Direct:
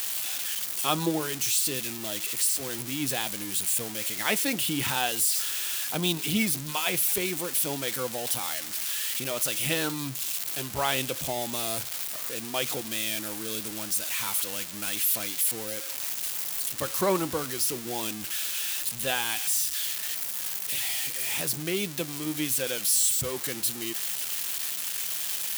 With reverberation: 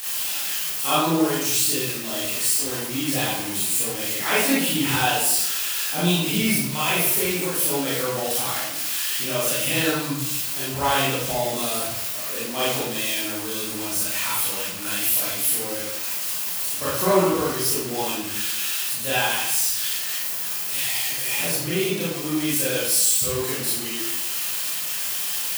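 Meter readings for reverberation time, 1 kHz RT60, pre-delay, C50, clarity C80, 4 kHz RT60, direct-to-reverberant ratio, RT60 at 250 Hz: 0.90 s, 0.90 s, 27 ms, -2.0 dB, 3.0 dB, 0.60 s, -10.0 dB, 0.95 s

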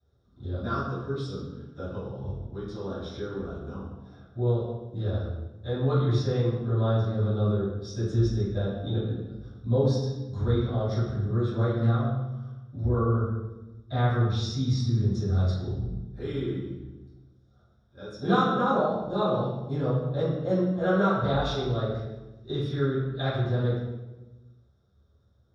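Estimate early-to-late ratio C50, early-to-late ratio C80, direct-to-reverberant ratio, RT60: -0.5 dB, 3.0 dB, -17.5 dB, 1.1 s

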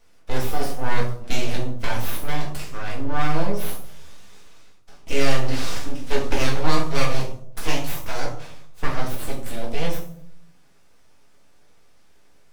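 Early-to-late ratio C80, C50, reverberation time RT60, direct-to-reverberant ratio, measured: 10.5 dB, 6.5 dB, 0.65 s, -4.0 dB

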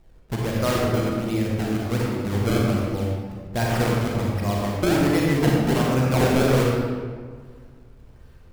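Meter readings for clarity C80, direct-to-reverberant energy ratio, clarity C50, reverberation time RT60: 0.5 dB, -3.0 dB, -1.5 dB, 1.8 s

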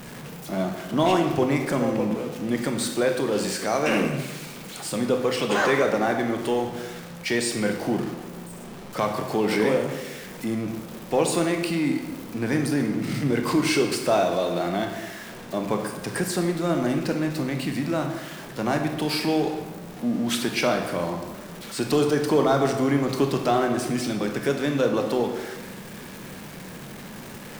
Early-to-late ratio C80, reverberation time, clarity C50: 7.5 dB, 1.3 s, 6.0 dB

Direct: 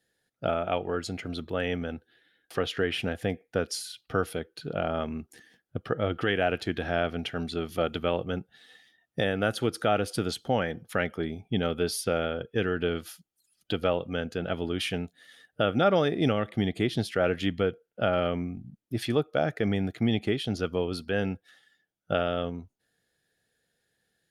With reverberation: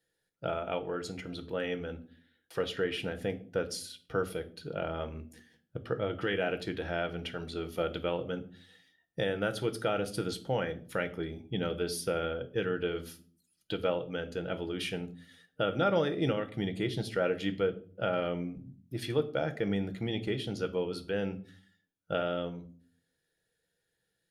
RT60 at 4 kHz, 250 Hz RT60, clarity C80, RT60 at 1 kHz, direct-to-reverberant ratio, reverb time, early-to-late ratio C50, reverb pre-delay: 0.30 s, 0.70 s, 20.5 dB, 0.40 s, 8.5 dB, 0.45 s, 16.5 dB, 6 ms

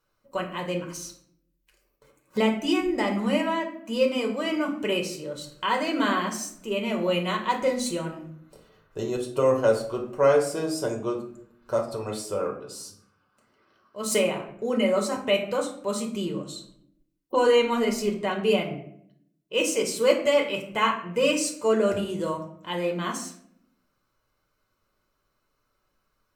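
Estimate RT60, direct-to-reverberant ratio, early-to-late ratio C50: 0.65 s, 1.0 dB, 9.0 dB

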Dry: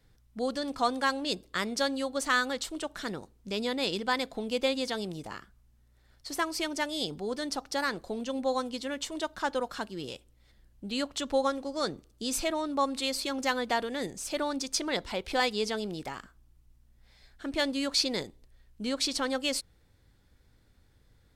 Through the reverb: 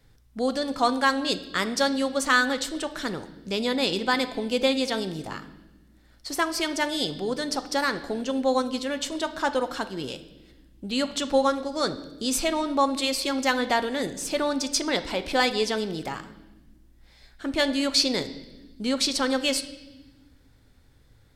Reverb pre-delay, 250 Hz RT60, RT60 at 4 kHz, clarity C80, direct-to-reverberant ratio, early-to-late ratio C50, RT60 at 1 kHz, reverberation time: 4 ms, 1.9 s, 1.2 s, 15.5 dB, 10.0 dB, 13.5 dB, 0.90 s, 1.1 s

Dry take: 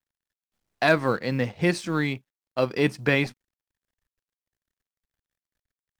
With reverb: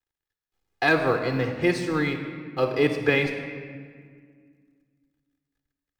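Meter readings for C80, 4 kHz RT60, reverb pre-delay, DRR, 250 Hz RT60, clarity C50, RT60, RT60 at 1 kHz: 8.5 dB, 1.2 s, 28 ms, 6.5 dB, 2.7 s, 7.5 dB, 1.9 s, 1.7 s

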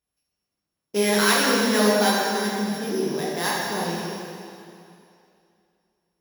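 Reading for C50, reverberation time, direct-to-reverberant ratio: -2.0 dB, 2.6 s, -6.0 dB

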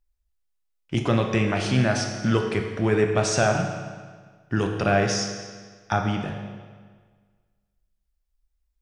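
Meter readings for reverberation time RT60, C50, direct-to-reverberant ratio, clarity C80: 1.6 s, 5.0 dB, 2.5 dB, 6.0 dB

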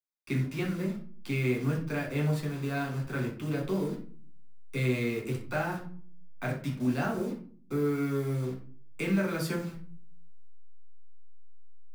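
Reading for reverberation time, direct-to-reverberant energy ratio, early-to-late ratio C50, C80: 0.45 s, -2.5 dB, 7.5 dB, 12.5 dB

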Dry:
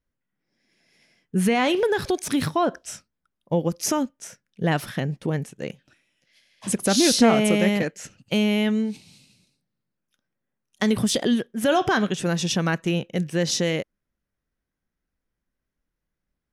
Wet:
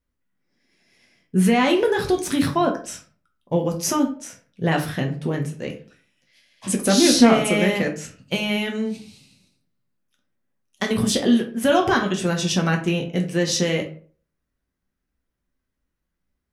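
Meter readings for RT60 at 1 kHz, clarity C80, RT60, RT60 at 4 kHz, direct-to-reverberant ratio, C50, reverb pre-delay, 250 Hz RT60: 0.40 s, 15.5 dB, 0.45 s, 0.30 s, 1.5 dB, 10.5 dB, 6 ms, 0.45 s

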